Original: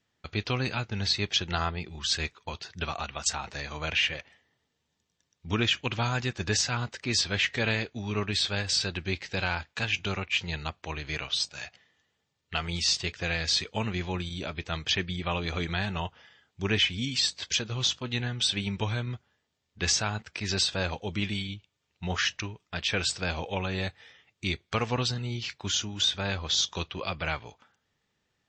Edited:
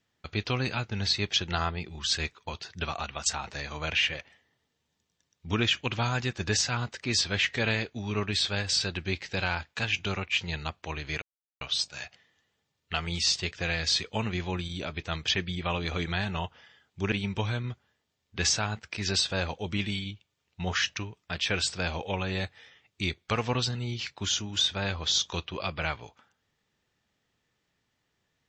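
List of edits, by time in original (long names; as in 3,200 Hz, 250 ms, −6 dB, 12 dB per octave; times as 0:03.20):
0:11.22: splice in silence 0.39 s
0:16.73–0:18.55: remove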